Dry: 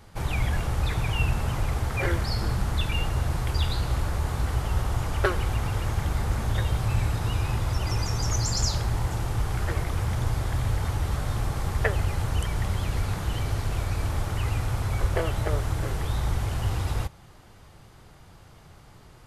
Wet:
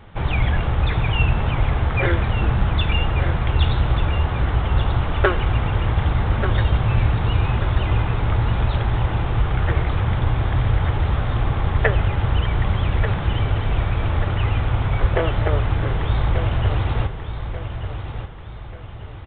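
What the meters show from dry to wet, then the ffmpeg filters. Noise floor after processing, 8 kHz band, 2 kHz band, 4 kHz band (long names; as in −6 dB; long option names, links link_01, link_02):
−33 dBFS, below −40 dB, +7.0 dB, +3.5 dB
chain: -af "aecho=1:1:1187|2374|3561|4748:0.355|0.142|0.0568|0.0227,volume=6.5dB" -ar 8000 -c:a pcm_alaw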